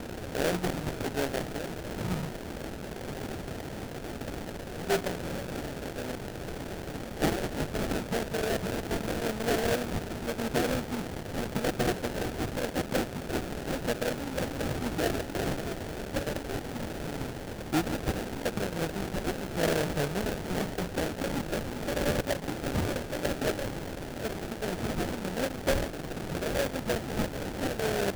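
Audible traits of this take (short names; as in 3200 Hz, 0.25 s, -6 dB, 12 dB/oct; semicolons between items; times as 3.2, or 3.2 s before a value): a quantiser's noise floor 6-bit, dither triangular; phasing stages 4, 0.87 Hz, lowest notch 400–4300 Hz; aliases and images of a low sample rate 1100 Hz, jitter 20%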